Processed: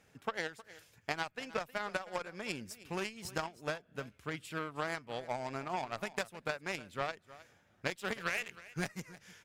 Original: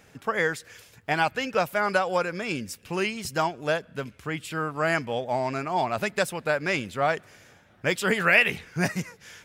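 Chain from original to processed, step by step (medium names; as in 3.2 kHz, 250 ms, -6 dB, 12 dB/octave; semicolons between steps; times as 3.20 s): Chebyshev shaper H 3 -26 dB, 5 -22 dB, 7 -16 dB, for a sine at -4.5 dBFS; compression 8:1, threshold -39 dBFS, peak gain reduction 24.5 dB; delay 313 ms -18 dB; trim +6 dB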